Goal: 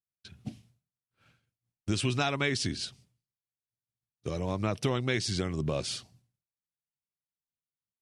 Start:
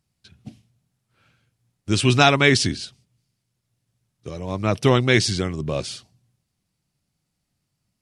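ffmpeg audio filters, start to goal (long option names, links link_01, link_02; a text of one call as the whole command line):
ffmpeg -i in.wav -af "agate=range=-33dB:threshold=-56dB:ratio=3:detection=peak,acompressor=threshold=-27dB:ratio=5" out.wav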